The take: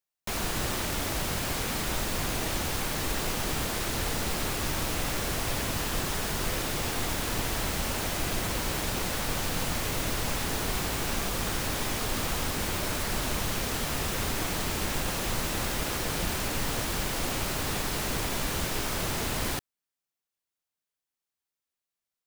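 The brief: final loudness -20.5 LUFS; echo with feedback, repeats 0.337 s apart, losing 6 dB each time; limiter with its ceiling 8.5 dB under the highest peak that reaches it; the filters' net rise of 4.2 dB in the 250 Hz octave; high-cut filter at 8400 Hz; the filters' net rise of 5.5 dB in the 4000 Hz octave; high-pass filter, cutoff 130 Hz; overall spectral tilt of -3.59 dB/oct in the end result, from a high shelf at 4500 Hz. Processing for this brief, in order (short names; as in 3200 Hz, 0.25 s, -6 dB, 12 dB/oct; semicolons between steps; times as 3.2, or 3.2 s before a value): HPF 130 Hz; LPF 8400 Hz; bell 250 Hz +6 dB; bell 4000 Hz +5 dB; high shelf 4500 Hz +4 dB; limiter -24 dBFS; feedback echo 0.337 s, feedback 50%, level -6 dB; gain +10 dB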